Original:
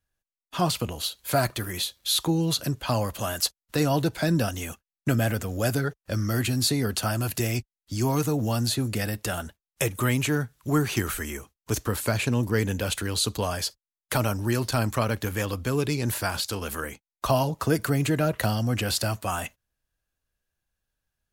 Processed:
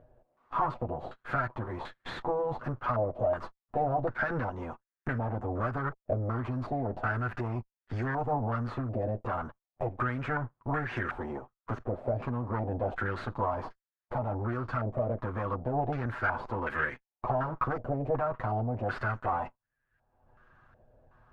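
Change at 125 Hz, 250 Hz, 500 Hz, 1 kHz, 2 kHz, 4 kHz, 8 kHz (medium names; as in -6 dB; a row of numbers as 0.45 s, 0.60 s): -7.5 dB, -9.5 dB, -4.0 dB, 0.0 dB, -3.5 dB, -25.0 dB, under -35 dB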